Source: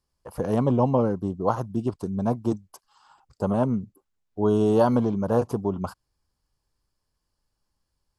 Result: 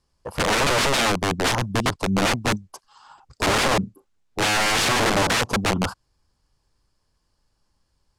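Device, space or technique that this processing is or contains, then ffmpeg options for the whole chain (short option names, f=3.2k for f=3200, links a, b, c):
overflowing digital effects unit: -filter_complex "[0:a]asettb=1/sr,asplit=3[a][b][c];[a]atrim=end=3.444[d];[b]atrim=start=3.44:end=5.32,asetpts=PTS-STARTPTS,afade=t=in:d=0.004:c=qsin,afade=t=out:st=1.876:d=0.004:c=qsin,asplit=2[e][f];[f]adelay=36,volume=-13dB[g];[e][g]amix=inputs=2:normalize=0,atrim=end_sample=82908[h];[c]atrim=start=5.316[i];[d][h]acrossfade=d=0.004:c1=hsin:c2=qsin[j];[j][i]acrossfade=d=0.004:c1=qsin:c2=hsin,aeval=exprs='(mod(14.1*val(0)+1,2)-1)/14.1':c=same,lowpass=9k,volume=8dB"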